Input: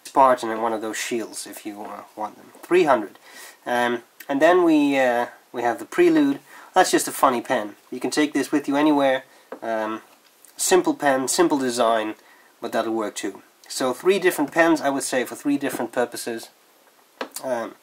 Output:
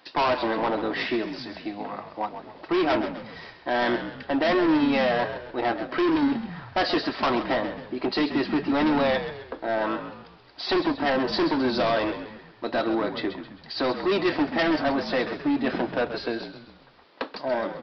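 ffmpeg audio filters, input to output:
ffmpeg -i in.wav -filter_complex "[0:a]aresample=11025,asoftclip=type=hard:threshold=-20dB,aresample=44100,asplit=6[link_01][link_02][link_03][link_04][link_05][link_06];[link_02]adelay=132,afreqshift=-52,volume=-10dB[link_07];[link_03]adelay=264,afreqshift=-104,volume=-17.1dB[link_08];[link_04]adelay=396,afreqshift=-156,volume=-24.3dB[link_09];[link_05]adelay=528,afreqshift=-208,volume=-31.4dB[link_10];[link_06]adelay=660,afreqshift=-260,volume=-38.5dB[link_11];[link_01][link_07][link_08][link_09][link_10][link_11]amix=inputs=6:normalize=0" out.wav

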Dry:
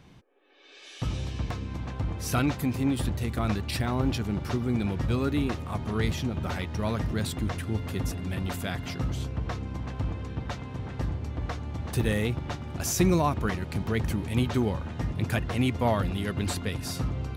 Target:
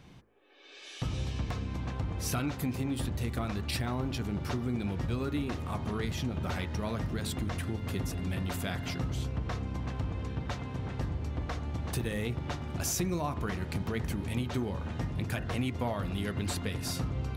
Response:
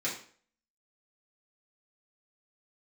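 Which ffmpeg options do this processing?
-af "acompressor=threshold=-28dB:ratio=6,bandreject=frequency=54.11:width_type=h:width=4,bandreject=frequency=108.22:width_type=h:width=4,bandreject=frequency=162.33:width_type=h:width=4,bandreject=frequency=216.44:width_type=h:width=4,bandreject=frequency=270.55:width_type=h:width=4,bandreject=frequency=324.66:width_type=h:width=4,bandreject=frequency=378.77:width_type=h:width=4,bandreject=frequency=432.88:width_type=h:width=4,bandreject=frequency=486.99:width_type=h:width=4,bandreject=frequency=541.1:width_type=h:width=4,bandreject=frequency=595.21:width_type=h:width=4,bandreject=frequency=649.32:width_type=h:width=4,bandreject=frequency=703.43:width_type=h:width=4,bandreject=frequency=757.54:width_type=h:width=4,bandreject=frequency=811.65:width_type=h:width=4,bandreject=frequency=865.76:width_type=h:width=4,bandreject=frequency=919.87:width_type=h:width=4,bandreject=frequency=973.98:width_type=h:width=4,bandreject=frequency=1028.09:width_type=h:width=4,bandreject=frequency=1082.2:width_type=h:width=4,bandreject=frequency=1136.31:width_type=h:width=4,bandreject=frequency=1190.42:width_type=h:width=4,bandreject=frequency=1244.53:width_type=h:width=4,bandreject=frequency=1298.64:width_type=h:width=4,bandreject=frequency=1352.75:width_type=h:width=4,bandreject=frequency=1406.86:width_type=h:width=4,bandreject=frequency=1460.97:width_type=h:width=4,bandreject=frequency=1515.08:width_type=h:width=4,bandreject=frequency=1569.19:width_type=h:width=4,bandreject=frequency=1623.3:width_type=h:width=4,bandreject=frequency=1677.41:width_type=h:width=4,bandreject=frequency=1731.52:width_type=h:width=4,bandreject=frequency=1785.63:width_type=h:width=4,bandreject=frequency=1839.74:width_type=h:width=4,bandreject=frequency=1893.85:width_type=h:width=4,bandreject=frequency=1947.96:width_type=h:width=4,bandreject=frequency=2002.07:width_type=h:width=4,bandreject=frequency=2056.18:width_type=h:width=4"

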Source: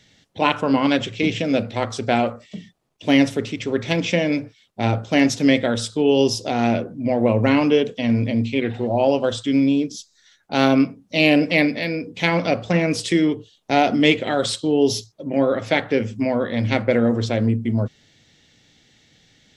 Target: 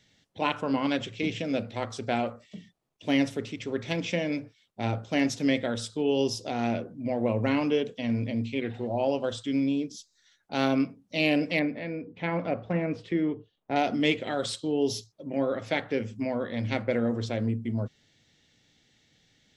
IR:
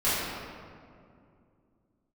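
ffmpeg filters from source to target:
-filter_complex "[0:a]asettb=1/sr,asplit=3[link_01][link_02][link_03];[link_01]atrim=end=11.594[link_04];[link_02]atrim=start=11.59:end=13.76,asetpts=PTS-STARTPTS,afade=type=in:duration=0.004:curve=qsin,afade=type=out:start_time=2.166:duration=0.004:curve=qsin,lowpass=1800[link_05];[link_03]atrim=start=13.756[link_06];[link_04][link_05]acrossfade=duration=0.004:curve1=hsin:curve2=qsin[link_07];[link_07][link_06]acrossfade=duration=0.004:curve1=qsin:curve2=hsin,volume=-9dB"

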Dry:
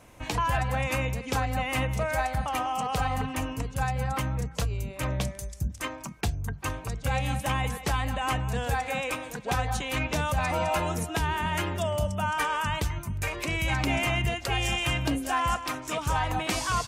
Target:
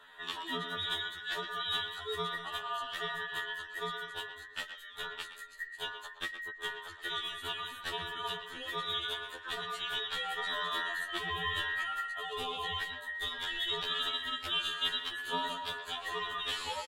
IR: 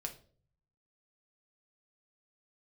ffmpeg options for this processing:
-filter_complex "[0:a]afftfilt=real='real(if(between(b,1,1012),(2*floor((b-1)/92)+1)*92-b,b),0)':imag='imag(if(between(b,1,1012),(2*floor((b-1)/92)+1)*92-b,b),0)*if(between(b,1,1012),-1,1)':win_size=2048:overlap=0.75,bass=frequency=250:gain=-8,treble=frequency=4000:gain=-12,acrossover=split=430|3000[link_01][link_02][link_03];[link_02]acompressor=threshold=-41dB:ratio=3[link_04];[link_01][link_04][link_03]amix=inputs=3:normalize=0,asubboost=boost=6:cutoff=56,acrossover=split=4800[link_05][link_06];[link_05]aexciter=amount=4.1:drive=1.5:freq=2700[link_07];[link_07][link_06]amix=inputs=2:normalize=0,asplit=2[link_08][link_09];[link_09]adelay=120,highpass=300,lowpass=3400,asoftclip=type=hard:threshold=-24.5dB,volume=-9dB[link_10];[link_08][link_10]amix=inputs=2:normalize=0,afftfilt=real='re*2*eq(mod(b,4),0)':imag='im*2*eq(mod(b,4),0)':win_size=2048:overlap=0.75"

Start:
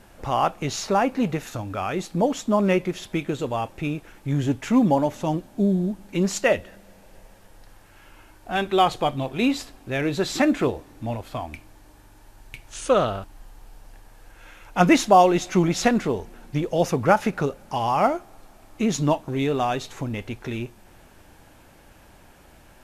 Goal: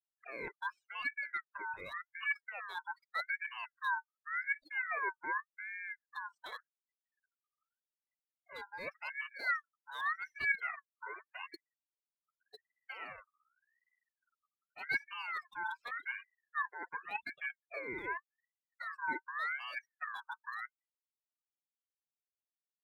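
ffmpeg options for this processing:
ffmpeg -i in.wav -filter_complex "[0:a]afftfilt=real='re*gte(hypot(re,im),0.0708)':imag='im*gte(hypot(re,im),0.0708)':win_size=1024:overlap=0.75,afftdn=noise_reduction=18:noise_floor=-43,highshelf=frequency=3900:width_type=q:width=3:gain=-10,areverse,acompressor=threshold=-28dB:ratio=6,areverse,asplit=3[link_01][link_02][link_03];[link_01]bandpass=frequency=300:width_type=q:width=8,volume=0dB[link_04];[link_02]bandpass=frequency=870:width_type=q:width=8,volume=-6dB[link_05];[link_03]bandpass=frequency=2240:width_type=q:width=8,volume=-9dB[link_06];[link_04][link_05][link_06]amix=inputs=3:normalize=0,acrossover=split=820|2100[link_07][link_08][link_09];[link_09]acrusher=bits=2:mode=log:mix=0:aa=0.000001[link_10];[link_07][link_08][link_10]amix=inputs=3:normalize=0,aresample=32000,aresample=44100,aeval=exprs='val(0)*sin(2*PI*1600*n/s+1600*0.25/0.86*sin(2*PI*0.86*n/s))':channel_layout=same,volume=3.5dB" out.wav

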